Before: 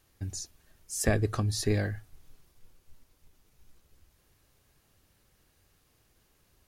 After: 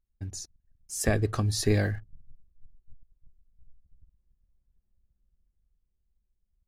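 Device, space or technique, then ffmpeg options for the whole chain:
voice memo with heavy noise removal: -af "anlmdn=0.001,dynaudnorm=f=470:g=7:m=7dB,volume=-1dB"

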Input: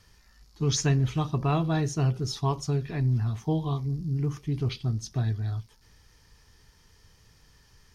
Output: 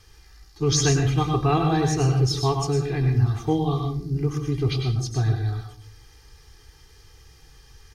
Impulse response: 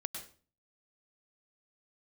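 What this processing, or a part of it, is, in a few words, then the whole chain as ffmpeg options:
microphone above a desk: -filter_complex "[0:a]aecho=1:1:2.5:0.78[a];[1:a]atrim=start_sample=2205[b];[a][b]afir=irnorm=-1:irlink=0,volume=5dB"

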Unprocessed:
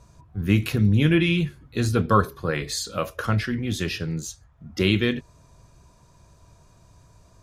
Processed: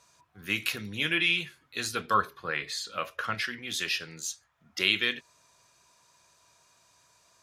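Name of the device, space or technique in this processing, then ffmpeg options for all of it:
filter by subtraction: -filter_complex "[0:a]asettb=1/sr,asplit=3[a][b][c];[a]atrim=end=2.144[d];[b]atrim=start=2.14:end=3.35,asetpts=PTS-STARTPTS,afade=t=in:d=0.004:c=qsin,afade=t=out:st=1.206:d=0.004:c=qsin,bass=f=250:g=5,treble=f=4k:g=-11[e];[c]atrim=start=3.346[f];[d][e]acrossfade=d=0.004:c1=hsin:c2=qsin[g];[g][f]acrossfade=d=0.004:c1=qsin:c2=hsin,asplit=2[h][i];[i]lowpass=2.5k,volume=-1[j];[h][j]amix=inputs=2:normalize=0"

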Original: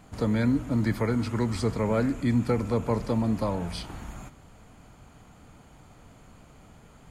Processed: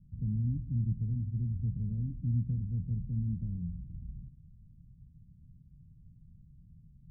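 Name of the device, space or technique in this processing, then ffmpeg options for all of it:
the neighbour's flat through the wall: -af "lowpass=f=160:w=0.5412,lowpass=f=160:w=1.3066,equalizer=f=160:t=o:w=0.42:g=4.5,volume=-2dB"

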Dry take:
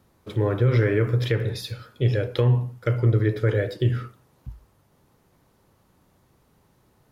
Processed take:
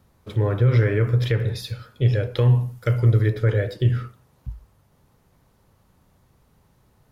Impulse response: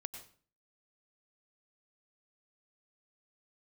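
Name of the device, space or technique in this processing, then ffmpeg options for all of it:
low shelf boost with a cut just above: -filter_complex "[0:a]lowshelf=f=100:g=7.5,equalizer=f=330:t=o:w=0.59:g=-4,asettb=1/sr,asplit=3[a][b][c];[a]atrim=end=2.414[d];[b]atrim=start=2.41:end=3.3,asetpts=PTS-STARTPTS,afade=t=in:d=0.004:c=qsin,afade=t=out:st=0.886:d=0.004:c=qsin,highshelf=f=4.8k:g=10[e];[c]atrim=start=3.296[f];[d][e]acrossfade=d=0.004:c1=hsin:c2=qsin[g];[g][f]acrossfade=d=0.004:c1=qsin:c2=hsin"

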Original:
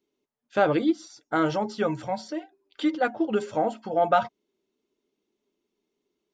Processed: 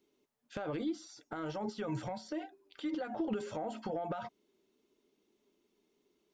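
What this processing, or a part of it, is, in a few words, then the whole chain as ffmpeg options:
de-esser from a sidechain: -filter_complex "[0:a]asplit=2[a][b];[b]highpass=f=5.4k:p=1,apad=whole_len=279160[c];[a][c]sidechaincompress=threshold=-59dB:ratio=6:attack=3.9:release=32,volume=3.5dB"

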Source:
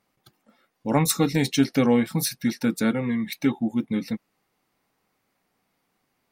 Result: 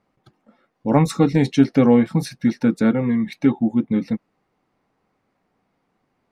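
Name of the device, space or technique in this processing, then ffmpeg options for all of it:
through cloth: -af "lowpass=8.7k,highshelf=f=2.2k:g=-14,volume=6dB"

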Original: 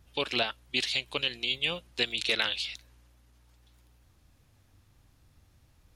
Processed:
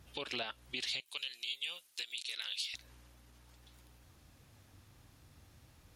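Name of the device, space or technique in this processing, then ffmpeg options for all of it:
podcast mastering chain: -filter_complex "[0:a]asettb=1/sr,asplit=3[a][b][c];[a]atrim=end=1.004[d];[b]atrim=start=1:end=2.74,asetpts=PTS-STARTPTS,afade=t=in:d=0.004:c=qsin,afade=t=out:st=1.736:d=0.004:c=qsin,aderivative[e];[c]atrim=start=2.736[f];[d][e]acrossfade=d=0.004:c1=hsin:c2=qsin[g];[g][f]acrossfade=d=0.004:c1=qsin:c2=hsin,highpass=f=89:p=1,acompressor=threshold=-35dB:ratio=4,alimiter=level_in=6dB:limit=-24dB:level=0:latency=1:release=159,volume=-6dB,volume=4.5dB" -ar 44100 -c:a libmp3lame -b:a 112k

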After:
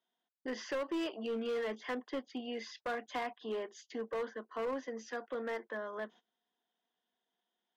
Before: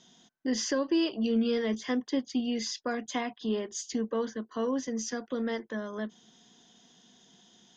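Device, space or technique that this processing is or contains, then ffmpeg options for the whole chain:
walkie-talkie: -af "highpass=500,lowpass=2.2k,asoftclip=type=hard:threshold=-32dB,agate=range=-20dB:threshold=-56dB:ratio=16:detection=peak"

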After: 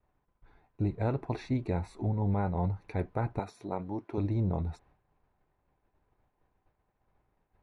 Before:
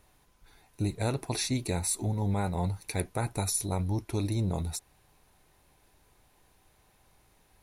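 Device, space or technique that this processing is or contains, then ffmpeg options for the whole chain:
hearing-loss simulation: -filter_complex "[0:a]asettb=1/sr,asplit=3[a][b][c];[a]atrim=end=3.394[d];[b]atrim=start=3.39:end=4.18,asetpts=PTS-STARTPTS,afade=t=in:d=0.004:c=qsin,afade=t=out:st=0.786:d=0.004:c=qsin,highpass=230[e];[c]atrim=start=4.176[f];[d][e]acrossfade=d=0.004:c1=hsin:c2=qsin[g];[g][f]acrossfade=d=0.004:c1=qsin:c2=hsin,lowpass=1.5k,agate=range=-33dB:threshold=-57dB:ratio=3:detection=peak"

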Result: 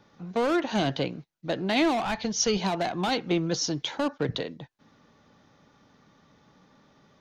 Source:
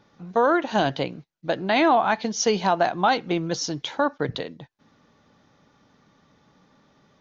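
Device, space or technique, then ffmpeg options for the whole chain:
one-band saturation: -filter_complex "[0:a]acrossover=split=420|2400[a][b][c];[b]asoftclip=type=tanh:threshold=-29dB[d];[a][d][c]amix=inputs=3:normalize=0,asplit=3[e][f][g];[e]afade=t=out:st=2.04:d=0.02[h];[f]asubboost=boost=9:cutoff=100,afade=t=in:st=2.04:d=0.02,afade=t=out:st=2.57:d=0.02[i];[g]afade=t=in:st=2.57:d=0.02[j];[h][i][j]amix=inputs=3:normalize=0"

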